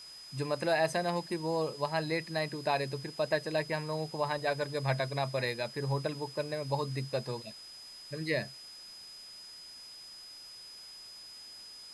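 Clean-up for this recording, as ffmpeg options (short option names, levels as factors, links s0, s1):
-af "bandreject=f=5000:w=30,afftdn=nr=29:nf=-49"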